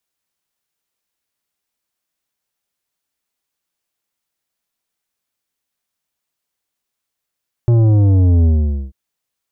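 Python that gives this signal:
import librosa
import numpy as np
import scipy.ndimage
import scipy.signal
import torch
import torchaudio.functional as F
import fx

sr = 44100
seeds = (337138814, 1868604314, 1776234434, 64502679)

y = fx.sub_drop(sr, level_db=-9.5, start_hz=120.0, length_s=1.24, drive_db=10.0, fade_s=0.47, end_hz=65.0)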